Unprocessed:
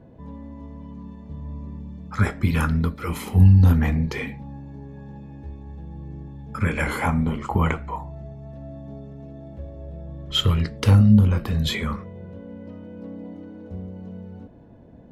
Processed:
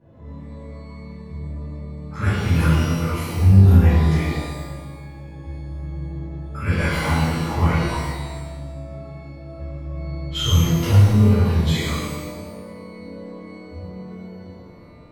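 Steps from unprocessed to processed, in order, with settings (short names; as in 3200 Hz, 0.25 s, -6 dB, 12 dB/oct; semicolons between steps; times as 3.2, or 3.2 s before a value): darkening echo 0.103 s, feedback 62%, level -8 dB; shimmer reverb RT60 1.1 s, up +12 st, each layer -8 dB, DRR -11 dB; gain -11 dB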